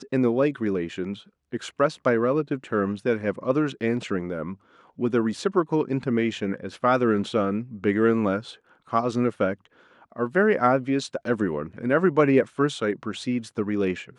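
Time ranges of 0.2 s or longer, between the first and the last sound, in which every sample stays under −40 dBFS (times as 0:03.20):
0:01.21–0:01.52
0:04.54–0:04.99
0:08.55–0:08.88
0:09.65–0:10.12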